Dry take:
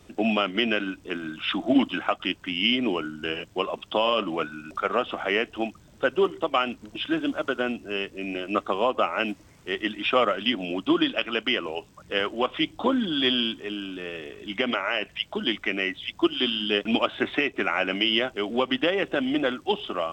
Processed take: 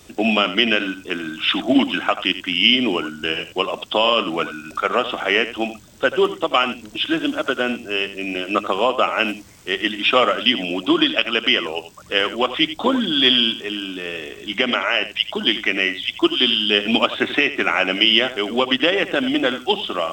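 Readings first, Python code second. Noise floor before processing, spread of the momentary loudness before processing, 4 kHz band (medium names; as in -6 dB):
-54 dBFS, 9 LU, +9.5 dB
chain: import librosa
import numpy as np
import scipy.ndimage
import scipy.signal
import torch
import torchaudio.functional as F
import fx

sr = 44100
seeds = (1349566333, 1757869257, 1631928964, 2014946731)

y = fx.high_shelf(x, sr, hz=3000.0, db=9.5)
y = fx.hum_notches(y, sr, base_hz=50, count=4)
y = y + 10.0 ** (-13.0 / 20.0) * np.pad(y, (int(86 * sr / 1000.0), 0))[:len(y)]
y = y * 10.0 ** (4.5 / 20.0)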